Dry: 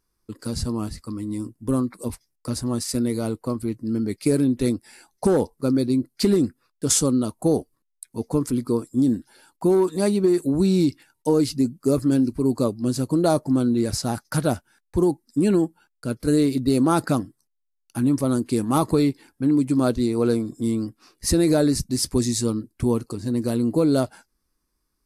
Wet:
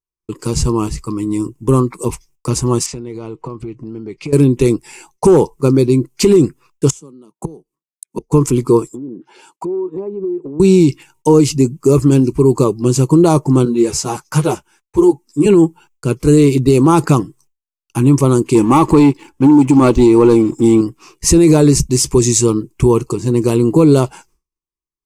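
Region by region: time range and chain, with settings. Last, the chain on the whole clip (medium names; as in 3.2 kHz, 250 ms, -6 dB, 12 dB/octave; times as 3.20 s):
2.86–4.33 s: low-pass 3.9 kHz + compression, threshold -35 dBFS
6.90–8.32 s: steep high-pass 170 Hz + bass shelf 220 Hz +11.5 dB + inverted gate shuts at -19 dBFS, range -31 dB
8.87–10.60 s: low-pass that closes with the level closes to 610 Hz, closed at -18 dBFS + high-pass 260 Hz + compression 5:1, threshold -35 dBFS
13.65–15.46 s: bass shelf 140 Hz -9 dB + three-phase chorus
18.55–20.81 s: treble shelf 6.5 kHz -7.5 dB + comb 3.5 ms, depth 41% + waveshaping leveller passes 1
whole clip: expander -54 dBFS; rippled EQ curve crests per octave 0.72, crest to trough 11 dB; loudness maximiser +11.5 dB; trim -1 dB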